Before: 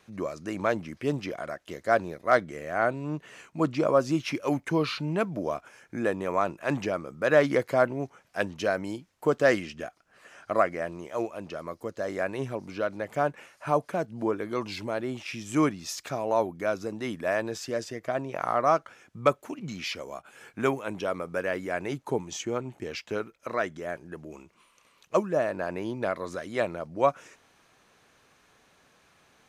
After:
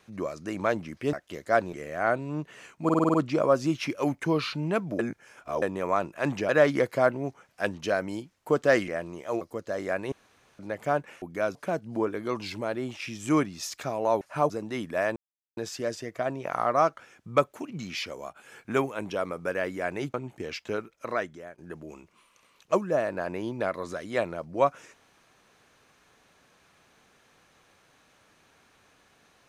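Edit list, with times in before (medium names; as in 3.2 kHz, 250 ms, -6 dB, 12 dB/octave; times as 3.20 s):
1.13–1.51 s: delete
2.11–2.48 s: delete
3.59 s: stutter 0.05 s, 7 plays
5.44–6.07 s: reverse
6.94–7.25 s: delete
9.64–10.74 s: delete
11.27–11.71 s: delete
12.42–12.89 s: room tone
13.52–13.81 s: swap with 16.47–16.80 s
17.46 s: insert silence 0.41 s
22.03–22.56 s: delete
23.54–24.00 s: fade out, to -17.5 dB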